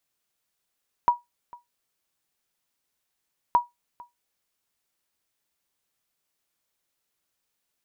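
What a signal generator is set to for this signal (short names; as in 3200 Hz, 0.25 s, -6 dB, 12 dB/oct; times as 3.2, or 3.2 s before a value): sonar ping 963 Hz, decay 0.17 s, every 2.47 s, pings 2, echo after 0.45 s, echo -24.5 dB -10.5 dBFS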